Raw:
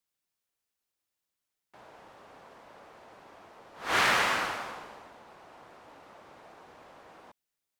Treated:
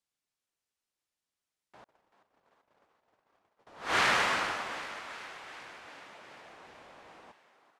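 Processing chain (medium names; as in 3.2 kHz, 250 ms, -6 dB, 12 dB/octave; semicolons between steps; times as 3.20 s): low-pass 9.7 kHz 12 dB/octave; 1.84–3.67 s: gate -49 dBFS, range -38 dB; 5.86–6.44 s: high-pass 100 Hz; frequency-shifting echo 386 ms, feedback 65%, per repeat +79 Hz, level -13.5 dB; trim -1.5 dB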